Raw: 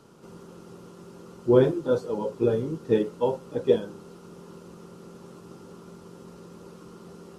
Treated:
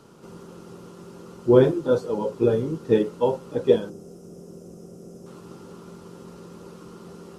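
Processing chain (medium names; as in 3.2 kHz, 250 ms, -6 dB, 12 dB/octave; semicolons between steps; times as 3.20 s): time-frequency box 3.89–5.27 s, 780–4900 Hz -14 dB; trim +3 dB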